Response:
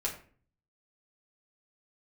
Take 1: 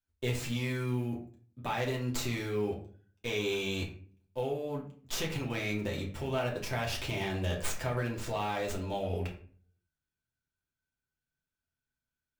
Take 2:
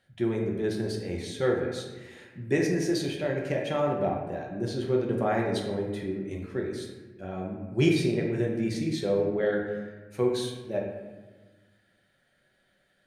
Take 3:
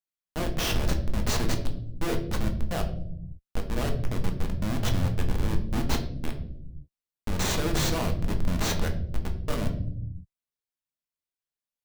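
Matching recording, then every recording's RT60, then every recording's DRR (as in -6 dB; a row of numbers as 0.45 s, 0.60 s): 1; 0.45 s, 1.3 s, 0.75 s; -3.0 dB, -1.0 dB, 3.5 dB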